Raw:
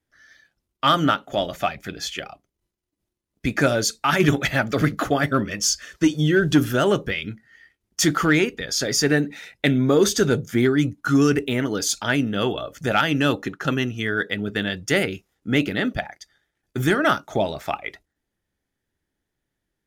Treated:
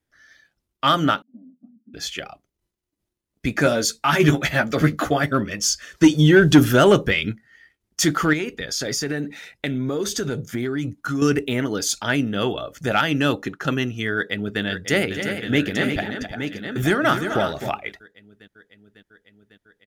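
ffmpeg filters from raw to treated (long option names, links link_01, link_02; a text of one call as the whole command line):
ffmpeg -i in.wav -filter_complex "[0:a]asettb=1/sr,asplit=3[link_01][link_02][link_03];[link_01]atrim=end=1.224[link_04];[link_02]atrim=start=1.22:end=1.94,asetpts=PTS-STARTPTS,afade=type=in:duration=0.004:curve=qsin,afade=type=out:start_time=0.716:duration=0.004:curve=qsin,asuperpass=centerf=240:order=4:qfactor=6.9[link_05];[link_03]atrim=start=1.936[link_06];[link_04][link_05]acrossfade=duration=0.004:curve1=hsin:curve2=qsin[link_07];[link_07][link_06]acrossfade=duration=0.004:curve1=qsin:curve2=hsin,asettb=1/sr,asplit=3[link_08][link_09][link_10];[link_08]atrim=end=3.644[link_11];[link_09]atrim=start=3.64:end=5.22,asetpts=PTS-STARTPTS,afade=type=in:duration=0.004:curve=qsin,afade=type=out:start_time=1.576:duration=0.004:curve=qsin,asplit=2[link_12][link_13];[link_13]adelay=13,volume=-6dB[link_14];[link_12][link_14]amix=inputs=2:normalize=0,atrim=end_sample=69678[link_15];[link_10]atrim=start=5.216[link_16];[link_11][link_15]acrossfade=duration=0.004:curve1=hsin:curve2=qsin[link_17];[link_17][link_16]acrossfade=duration=0.004:curve1=qsin:curve2=hsin,asplit=3[link_18][link_19][link_20];[link_18]afade=type=out:start_time=5.96:duration=0.02[link_21];[link_19]acontrast=52,afade=type=in:start_time=5.96:duration=0.02,afade=type=out:start_time=7.31:duration=0.02[link_22];[link_20]afade=type=in:start_time=7.31:duration=0.02[link_23];[link_21][link_22][link_23]amix=inputs=3:normalize=0,asettb=1/sr,asplit=3[link_24][link_25][link_26];[link_24]atrim=end=8.334[link_27];[link_25]atrim=start=8.33:end=11.22,asetpts=PTS-STARTPTS,afade=type=in:duration=0.004:curve=qsin,afade=type=out:start_time=2.886:duration=0.004:curve=qsin,acompressor=threshold=-21dB:ratio=6:attack=3.2:release=140:knee=1:detection=peak[link_28];[link_26]atrim=start=11.216[link_29];[link_27][link_28]acrossfade=duration=0.004:curve1=hsin:curve2=qsin[link_30];[link_30][link_29]acrossfade=duration=0.004:curve1=qsin:curve2=hsin,asplit=2[link_31][link_32];[link_32]afade=type=in:start_time=14.15:duration=0.01,afade=type=out:start_time=14.62:duration=0.01,aecho=0:1:550|1100|1650|2200|2750|3300|3850|4400|4950|5500|6050|6600:0.354813|0.26611|0.199583|0.149687|0.112265|0.0841989|0.0631492|0.0473619|0.0355214|0.0266411|0.0199808|0.0149856[link_33];[link_31][link_33]amix=inputs=2:normalize=0,asplit=3[link_34][link_35][link_36];[link_34]afade=type=out:start_time=15.14:duration=0.02[link_37];[link_35]aecho=1:1:258|346|871:0.299|0.376|0.376,afade=type=in:start_time=15.14:duration=0.02,afade=type=out:start_time=17.68:duration=0.02[link_38];[link_36]afade=type=in:start_time=17.68:duration=0.02[link_39];[link_37][link_38][link_39]amix=inputs=3:normalize=0" out.wav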